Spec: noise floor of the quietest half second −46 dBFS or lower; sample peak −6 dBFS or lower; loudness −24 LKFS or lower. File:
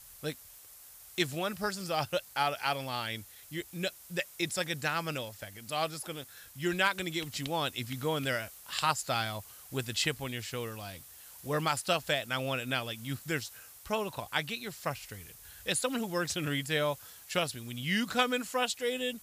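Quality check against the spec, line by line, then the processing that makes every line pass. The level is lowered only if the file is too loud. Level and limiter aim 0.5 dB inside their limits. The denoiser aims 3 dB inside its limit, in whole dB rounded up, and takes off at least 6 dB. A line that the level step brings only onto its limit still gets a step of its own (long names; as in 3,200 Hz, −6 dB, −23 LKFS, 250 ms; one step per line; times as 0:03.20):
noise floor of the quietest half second −53 dBFS: in spec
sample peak −13.5 dBFS: in spec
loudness −33.5 LKFS: in spec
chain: no processing needed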